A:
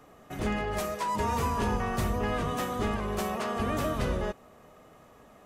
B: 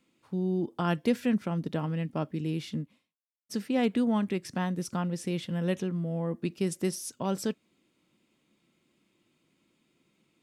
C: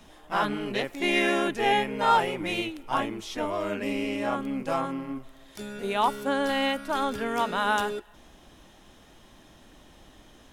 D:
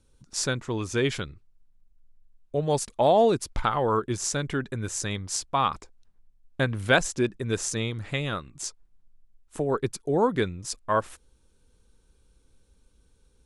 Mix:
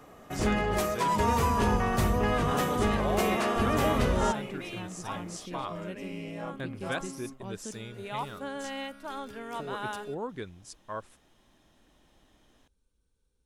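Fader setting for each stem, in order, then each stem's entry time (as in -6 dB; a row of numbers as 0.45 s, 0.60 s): +3.0 dB, -11.5 dB, -11.0 dB, -13.5 dB; 0.00 s, 0.20 s, 2.15 s, 0.00 s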